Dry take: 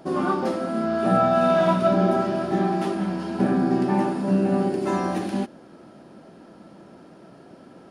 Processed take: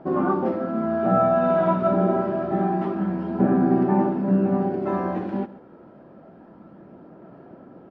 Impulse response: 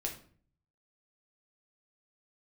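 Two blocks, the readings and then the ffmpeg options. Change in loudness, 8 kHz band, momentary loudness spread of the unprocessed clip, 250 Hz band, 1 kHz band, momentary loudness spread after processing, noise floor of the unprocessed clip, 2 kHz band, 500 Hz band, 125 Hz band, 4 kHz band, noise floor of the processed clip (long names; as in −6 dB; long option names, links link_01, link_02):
0.0 dB, can't be measured, 8 LU, +0.5 dB, −0.5 dB, 7 LU, −48 dBFS, −4.0 dB, 0.0 dB, +0.5 dB, below −10 dB, −48 dBFS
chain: -filter_complex "[0:a]lowpass=1500,aphaser=in_gain=1:out_gain=1:delay=2.2:decay=0.21:speed=0.27:type=sinusoidal,asplit=2[link_01][link_02];[link_02]aecho=0:1:135:0.133[link_03];[link_01][link_03]amix=inputs=2:normalize=0"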